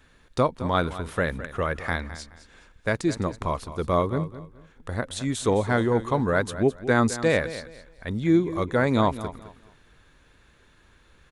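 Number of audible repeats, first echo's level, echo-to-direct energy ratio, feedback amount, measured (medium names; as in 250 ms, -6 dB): 2, -14.0 dB, -13.5 dB, 26%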